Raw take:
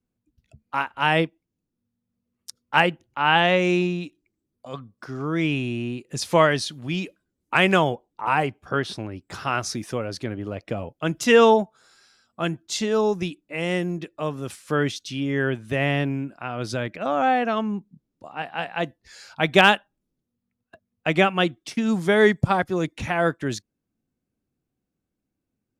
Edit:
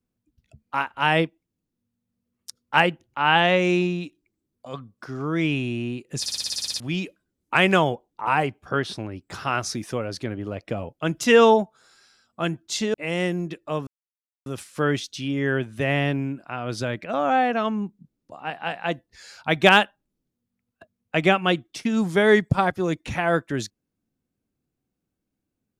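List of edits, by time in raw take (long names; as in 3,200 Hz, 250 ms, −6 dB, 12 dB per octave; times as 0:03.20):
0:06.20: stutter in place 0.06 s, 10 plays
0:12.94–0:13.45: remove
0:14.38: splice in silence 0.59 s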